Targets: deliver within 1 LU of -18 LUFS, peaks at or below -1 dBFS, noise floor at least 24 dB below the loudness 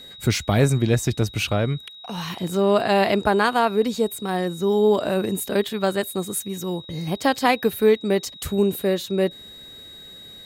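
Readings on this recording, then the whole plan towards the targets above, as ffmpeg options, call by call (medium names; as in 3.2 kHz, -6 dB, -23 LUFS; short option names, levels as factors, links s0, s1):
steady tone 3.8 kHz; tone level -40 dBFS; loudness -22.0 LUFS; peak level -5.5 dBFS; loudness target -18.0 LUFS
-> -af "bandreject=f=3800:w=30"
-af "volume=1.58"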